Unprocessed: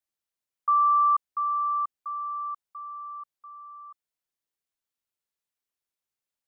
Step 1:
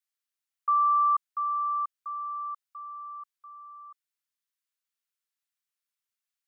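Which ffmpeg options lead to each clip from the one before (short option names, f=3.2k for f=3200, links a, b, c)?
-af "highpass=f=1.1k:w=0.5412,highpass=f=1.1k:w=1.3066"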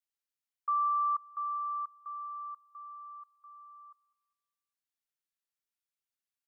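-filter_complex "[0:a]asplit=2[a][b];[b]adelay=203,lowpass=f=1.2k:p=1,volume=-19.5dB,asplit=2[c][d];[d]adelay=203,lowpass=f=1.2k:p=1,volume=0.53,asplit=2[e][f];[f]adelay=203,lowpass=f=1.2k:p=1,volume=0.53,asplit=2[g][h];[h]adelay=203,lowpass=f=1.2k:p=1,volume=0.53[i];[a][c][e][g][i]amix=inputs=5:normalize=0,volume=-6dB"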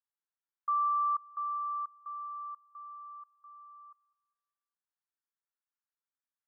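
-af "asuperpass=centerf=1200:order=8:qfactor=1.2"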